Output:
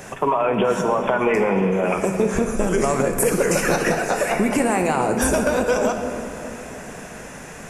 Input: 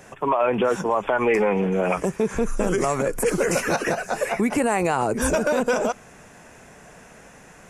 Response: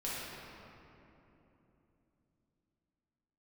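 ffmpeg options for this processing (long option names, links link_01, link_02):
-filter_complex "[0:a]acompressor=threshold=-27dB:ratio=4,asplit=2[link_01][link_02];[1:a]atrim=start_sample=2205,highshelf=frequency=6000:gain=10.5[link_03];[link_02][link_03]afir=irnorm=-1:irlink=0,volume=-7dB[link_04];[link_01][link_04]amix=inputs=2:normalize=0,volume=6.5dB"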